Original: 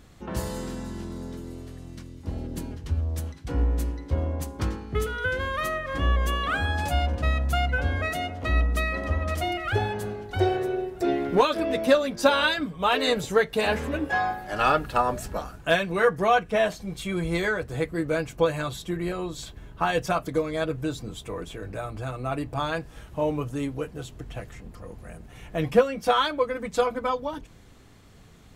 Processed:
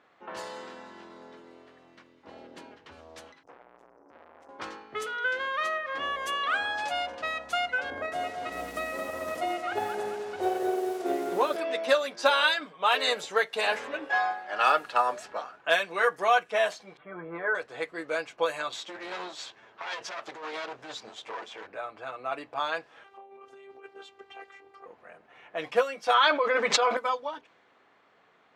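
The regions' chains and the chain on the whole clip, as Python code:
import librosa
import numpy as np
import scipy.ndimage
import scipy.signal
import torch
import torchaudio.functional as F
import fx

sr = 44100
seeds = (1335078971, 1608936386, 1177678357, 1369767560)

y = fx.chain(x, sr, fx.brickwall_bandstop(low_hz=1000.0, high_hz=5000.0),
    fx.tube_stage(drive_db=41.0, bias=0.45), at=(3.43, 4.49))
y = fx.chain(y, sr, fx.tilt_shelf(db=9.5, hz=940.0),
    fx.transient(attack_db=-12, sustain_db=-4),
    fx.echo_crushed(ms=219, feedback_pct=55, bits=7, wet_db=-6), at=(7.9, 11.56))
y = fx.chain(y, sr, fx.lowpass(hz=1500.0, slope=24),
    fx.comb(ms=6.7, depth=0.64), at=(16.97, 17.55))
y = fx.chain(y, sr, fx.lower_of_two(delay_ms=9.0),
    fx.over_compress(threshold_db=-32.0, ratio=-1.0),
    fx.peak_eq(hz=6000.0, db=9.0, octaves=1.3), at=(18.72, 21.67))
y = fx.chain(y, sr, fx.robotise(hz=393.0),
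    fx.notch(hz=1700.0, q=8.0),
    fx.over_compress(threshold_db=-38.0, ratio=-1.0), at=(23.04, 24.86))
y = fx.chain(y, sr, fx.highpass(hz=300.0, slope=6),
    fx.air_absorb(metres=180.0),
    fx.env_flatten(amount_pct=100), at=(26.14, 26.97))
y = fx.env_lowpass(y, sr, base_hz=1900.0, full_db=-17.5)
y = scipy.signal.sosfilt(scipy.signal.butter(2, 640.0, 'highpass', fs=sr, output='sos'), y)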